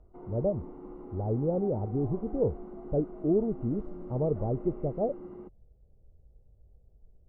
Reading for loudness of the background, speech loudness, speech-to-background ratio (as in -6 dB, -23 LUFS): -44.5 LUFS, -31.5 LUFS, 13.0 dB